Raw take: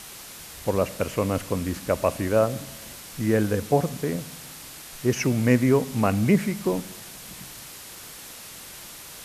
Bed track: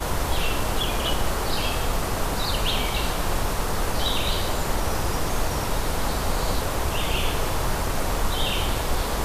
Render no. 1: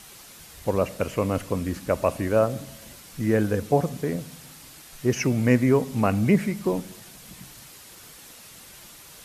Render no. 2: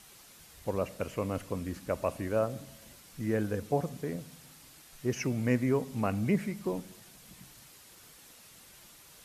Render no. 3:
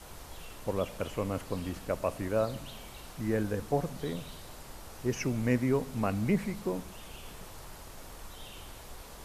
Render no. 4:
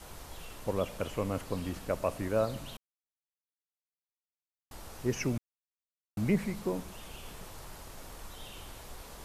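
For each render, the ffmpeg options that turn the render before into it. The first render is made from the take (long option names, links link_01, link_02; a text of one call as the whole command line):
ffmpeg -i in.wav -af "afftdn=noise_reduction=6:noise_floor=-42" out.wav
ffmpeg -i in.wav -af "volume=-8.5dB" out.wav
ffmpeg -i in.wav -i bed.wav -filter_complex "[1:a]volume=-23dB[link_01];[0:a][link_01]amix=inputs=2:normalize=0" out.wav
ffmpeg -i in.wav -filter_complex "[0:a]asplit=5[link_01][link_02][link_03][link_04][link_05];[link_01]atrim=end=2.77,asetpts=PTS-STARTPTS,afade=type=out:start_time=2.766:duration=0.004:curve=hsin[link_06];[link_02]atrim=start=2.77:end=4.71,asetpts=PTS-STARTPTS,volume=0[link_07];[link_03]atrim=start=4.71:end=5.38,asetpts=PTS-STARTPTS,afade=type=in:duration=0.004:curve=hsin,afade=type=out:start_time=0.666:duration=0.004:curve=hsin[link_08];[link_04]atrim=start=5.38:end=6.17,asetpts=PTS-STARTPTS,volume=0[link_09];[link_05]atrim=start=6.17,asetpts=PTS-STARTPTS,afade=type=in:duration=0.004:curve=hsin[link_10];[link_06][link_07][link_08][link_09][link_10]concat=n=5:v=0:a=1" out.wav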